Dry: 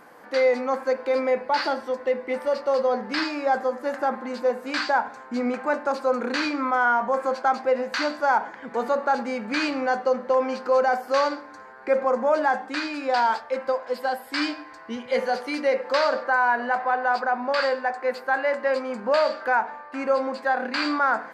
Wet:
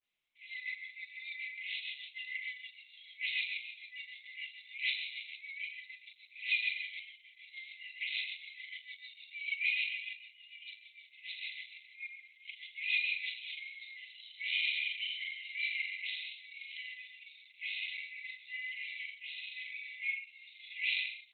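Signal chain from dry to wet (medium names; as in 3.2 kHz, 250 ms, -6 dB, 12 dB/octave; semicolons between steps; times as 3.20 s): delay that grows with frequency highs late, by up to 262 ms; simulated room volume 2900 m³, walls mixed, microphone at 2.3 m; compression 16:1, threshold -26 dBFS, peak gain reduction 16 dB; on a send: flutter echo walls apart 7.2 m, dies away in 0.62 s; on the sum: rotary cabinet horn 6.7 Hz, later 1 Hz, at 12.99 s; spectral noise reduction 7 dB; word length cut 10-bit, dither none; saturation -20 dBFS, distortion -25 dB; gate with hold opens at -32 dBFS; FFT band-pass 2–4.8 kHz; level rider gain up to 8.5 dB; Opus 8 kbps 48 kHz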